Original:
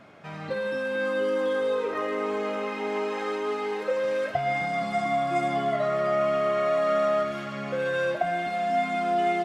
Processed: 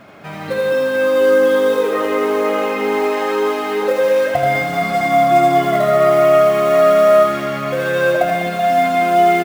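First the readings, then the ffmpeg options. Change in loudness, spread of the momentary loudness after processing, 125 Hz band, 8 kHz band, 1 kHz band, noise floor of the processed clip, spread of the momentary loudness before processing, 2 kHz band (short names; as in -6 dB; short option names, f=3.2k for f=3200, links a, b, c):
+12.0 dB, 7 LU, +11.5 dB, n/a, +11.5 dB, -28 dBFS, 6 LU, +10.5 dB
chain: -af "acrusher=bits=6:mode=log:mix=0:aa=0.000001,aecho=1:1:80|200|380|650|1055:0.631|0.398|0.251|0.158|0.1,volume=8.5dB"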